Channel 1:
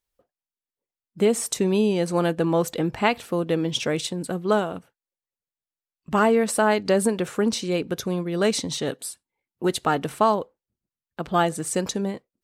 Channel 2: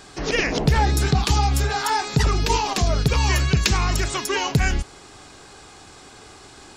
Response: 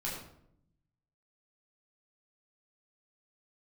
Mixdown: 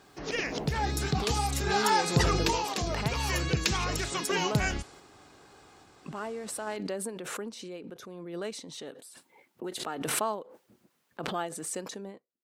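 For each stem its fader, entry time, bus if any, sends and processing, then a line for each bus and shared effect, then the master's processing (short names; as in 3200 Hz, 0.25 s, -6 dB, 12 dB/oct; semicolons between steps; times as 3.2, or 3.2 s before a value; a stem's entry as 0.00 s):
-11.0 dB, 0.00 s, no send, HPF 240 Hz 12 dB/oct; backwards sustainer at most 25 dB/s
-3.0 dB, 0.00 s, no send, HPF 110 Hz 6 dB/oct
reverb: off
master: random-step tremolo 1.2 Hz, depth 55%; mismatched tape noise reduction decoder only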